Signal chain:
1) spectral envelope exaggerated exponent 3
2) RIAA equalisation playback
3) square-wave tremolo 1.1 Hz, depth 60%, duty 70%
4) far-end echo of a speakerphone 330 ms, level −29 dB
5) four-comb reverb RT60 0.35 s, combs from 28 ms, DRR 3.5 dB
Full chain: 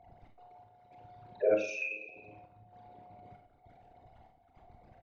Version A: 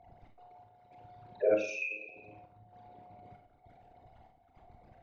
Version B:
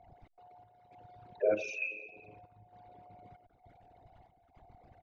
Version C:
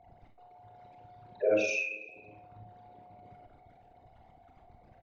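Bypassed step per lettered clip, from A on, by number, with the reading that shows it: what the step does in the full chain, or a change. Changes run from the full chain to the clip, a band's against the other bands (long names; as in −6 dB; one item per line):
4, change in momentary loudness spread −5 LU
5, 250 Hz band −1.5 dB
3, change in momentary loudness spread −4 LU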